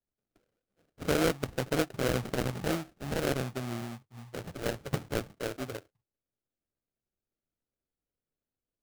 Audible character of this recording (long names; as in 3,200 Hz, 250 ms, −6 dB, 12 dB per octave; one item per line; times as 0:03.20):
aliases and images of a low sample rate 1,000 Hz, jitter 20%